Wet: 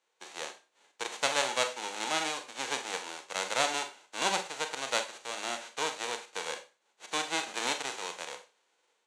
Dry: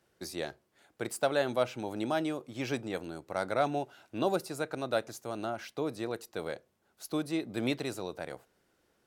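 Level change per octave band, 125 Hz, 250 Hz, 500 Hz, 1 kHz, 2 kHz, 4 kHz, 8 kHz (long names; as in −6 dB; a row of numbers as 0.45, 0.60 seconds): −14.0, −11.0, −5.0, +3.0, +6.5, +10.0, +11.5 decibels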